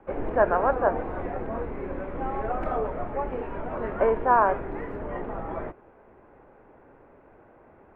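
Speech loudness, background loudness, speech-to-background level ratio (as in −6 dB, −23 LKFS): −24.5 LKFS, −32.5 LKFS, 8.0 dB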